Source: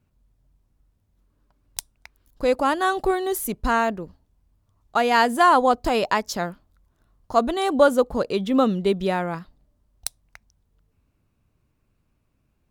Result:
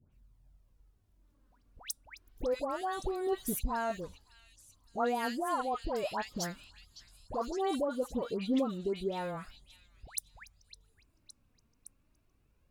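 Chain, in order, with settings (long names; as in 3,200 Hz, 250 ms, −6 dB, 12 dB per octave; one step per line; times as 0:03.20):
dynamic equaliser 2,000 Hz, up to −5 dB, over −32 dBFS, Q 0.8
downward compressor 3 to 1, threshold −31 dBFS, peak gain reduction 14.5 dB
all-pass dispersion highs, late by 120 ms, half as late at 1,500 Hz
phase shifter 0.3 Hz, delay 4.4 ms, feedback 41%
echo through a band-pass that steps 561 ms, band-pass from 3,500 Hz, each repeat 0.7 octaves, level −9 dB
level −3.5 dB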